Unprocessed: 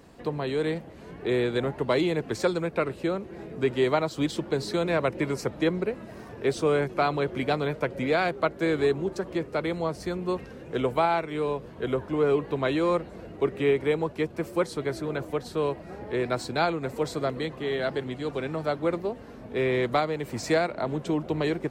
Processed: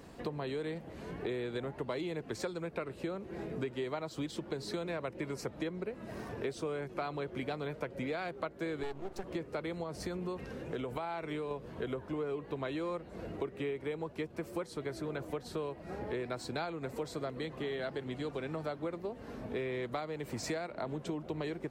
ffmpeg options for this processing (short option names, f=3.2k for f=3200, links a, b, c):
-filter_complex "[0:a]asettb=1/sr,asplit=3[a][b][c];[a]atrim=end=8.834[d];[b]atrim=start=8.83:end=9.24,asetpts=PTS-STARTPTS,afade=t=in:d=0.004:c=qsin,afade=t=out:st=0.406:d=0.004:c=qsin,aeval=exprs='max(val(0),0)':c=same[e];[c]atrim=start=9.236[f];[d][e]acrossfade=d=0.004:c1=hsin:c2=qsin[g];[g][f]acrossfade=d=0.004:c1=qsin:c2=hsin,asettb=1/sr,asplit=3[h][i][j];[h]atrim=end=9.834[k];[i]atrim=start=9.83:end=11.51,asetpts=PTS-STARTPTS,afade=t=in:d=0.004:c=qsin,afade=t=out:st=1.676:d=0.004:c=qsin,acompressor=threshold=-29dB:ratio=3:attack=3.2:release=140:knee=1:detection=peak[l];[j]atrim=start=11.506[m];[k][l]acrossfade=d=0.004:c1=hsin:c2=qsin[n];[n][m]acrossfade=d=0.004:c1=qsin:c2=hsin,acompressor=threshold=-35dB:ratio=6"